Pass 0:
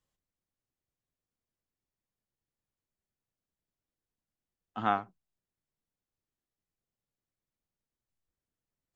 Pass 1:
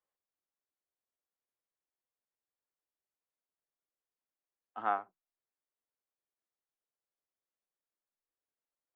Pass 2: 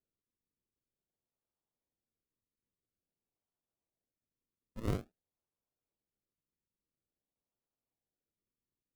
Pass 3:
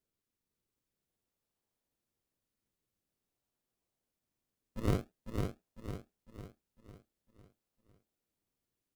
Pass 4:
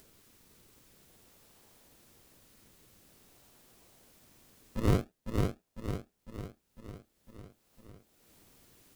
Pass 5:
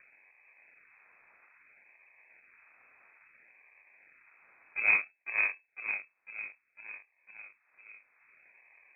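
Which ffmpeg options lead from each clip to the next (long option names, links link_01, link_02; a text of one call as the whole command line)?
ffmpeg -i in.wav -filter_complex "[0:a]acrossover=split=350 2200:gain=0.0891 1 0.141[link_01][link_02][link_03];[link_01][link_02][link_03]amix=inputs=3:normalize=0,volume=-2.5dB" out.wav
ffmpeg -i in.wav -af "acrusher=samples=41:mix=1:aa=0.000001:lfo=1:lforange=41:lforate=0.49,tiltshelf=frequency=970:gain=3.5,volume=-5dB" out.wav
ffmpeg -i in.wav -af "aecho=1:1:502|1004|1506|2008|2510|3012:0.596|0.274|0.126|0.058|0.0267|0.0123,volume=3.5dB" out.wav
ffmpeg -i in.wav -filter_complex "[0:a]asplit=2[link_01][link_02];[link_02]acompressor=mode=upward:threshold=-41dB:ratio=2.5,volume=0.5dB[link_03];[link_01][link_03]amix=inputs=2:normalize=0,asoftclip=type=tanh:threshold=-12.5dB" out.wav
ffmpeg -i in.wav -af "acrusher=samples=25:mix=1:aa=0.000001:lfo=1:lforange=25:lforate=0.6,lowpass=frequency=2200:width_type=q:width=0.5098,lowpass=frequency=2200:width_type=q:width=0.6013,lowpass=frequency=2200:width_type=q:width=0.9,lowpass=frequency=2200:width_type=q:width=2.563,afreqshift=-2600" out.wav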